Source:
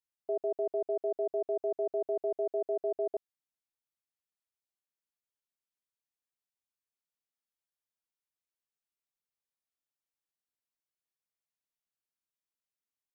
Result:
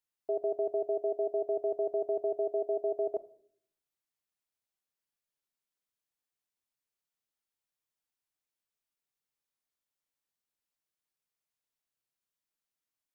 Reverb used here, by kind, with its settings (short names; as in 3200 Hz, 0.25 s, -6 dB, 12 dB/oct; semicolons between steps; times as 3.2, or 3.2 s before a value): shoebox room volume 870 m³, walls furnished, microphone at 0.46 m; gain +1.5 dB